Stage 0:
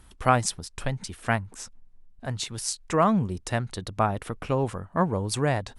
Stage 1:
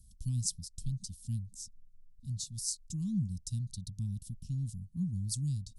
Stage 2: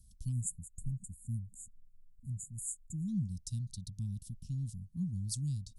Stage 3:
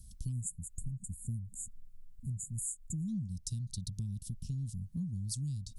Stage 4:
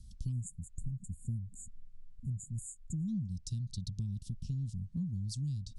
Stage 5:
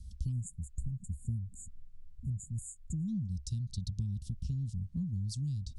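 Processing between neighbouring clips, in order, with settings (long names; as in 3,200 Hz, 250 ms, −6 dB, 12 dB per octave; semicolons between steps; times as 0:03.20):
inverse Chebyshev band-stop filter 420–2,200 Hz, stop band 50 dB; level −4.5 dB
time-frequency box erased 0:00.32–0:03.08, 470–6,700 Hz; level −2 dB
downward compressor, threshold −43 dBFS, peak gain reduction 12.5 dB; level +8 dB
low-pass filter 5,400 Hz 12 dB per octave; level +1 dB
parametric band 66 Hz +12.5 dB 0.53 octaves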